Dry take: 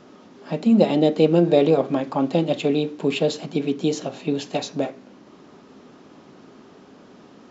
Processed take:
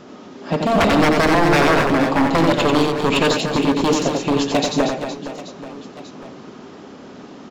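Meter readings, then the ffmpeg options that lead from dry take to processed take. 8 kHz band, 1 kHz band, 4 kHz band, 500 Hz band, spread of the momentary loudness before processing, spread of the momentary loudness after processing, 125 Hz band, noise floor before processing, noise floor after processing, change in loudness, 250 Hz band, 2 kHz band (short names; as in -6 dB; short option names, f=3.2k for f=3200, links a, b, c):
n/a, +12.0 dB, +9.0 dB, +2.0 dB, 11 LU, 20 LU, +4.0 dB, -49 dBFS, -40 dBFS, +4.0 dB, +3.0 dB, +15.5 dB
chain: -af "aeval=exprs='0.126*(abs(mod(val(0)/0.126+3,4)-2)-1)':c=same,aecho=1:1:90|234|464.4|833|1423:0.631|0.398|0.251|0.158|0.1,volume=7dB"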